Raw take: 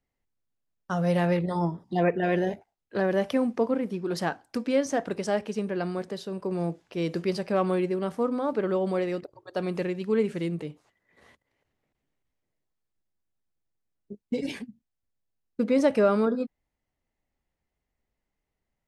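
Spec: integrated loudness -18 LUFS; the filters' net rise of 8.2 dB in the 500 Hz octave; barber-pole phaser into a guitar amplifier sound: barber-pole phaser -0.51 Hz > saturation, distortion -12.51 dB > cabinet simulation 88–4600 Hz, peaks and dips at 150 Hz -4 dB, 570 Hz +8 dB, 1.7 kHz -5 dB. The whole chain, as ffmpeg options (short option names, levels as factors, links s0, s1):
-filter_complex "[0:a]equalizer=f=500:t=o:g=4,asplit=2[s0][s1];[s1]afreqshift=-0.51[s2];[s0][s2]amix=inputs=2:normalize=1,asoftclip=threshold=0.0794,highpass=88,equalizer=f=150:t=q:w=4:g=-4,equalizer=f=570:t=q:w=4:g=8,equalizer=f=1700:t=q:w=4:g=-5,lowpass=f=4600:w=0.5412,lowpass=f=4600:w=1.3066,volume=3.16"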